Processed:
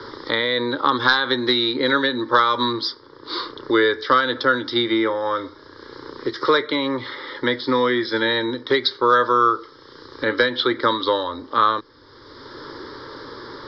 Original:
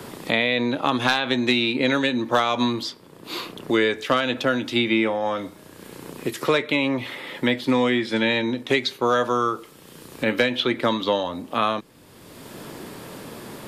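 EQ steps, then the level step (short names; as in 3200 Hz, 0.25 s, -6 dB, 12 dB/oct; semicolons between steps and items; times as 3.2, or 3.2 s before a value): rippled Chebyshev low-pass 5300 Hz, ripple 3 dB; high shelf 2200 Hz +7.5 dB; fixed phaser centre 700 Hz, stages 6; +6.0 dB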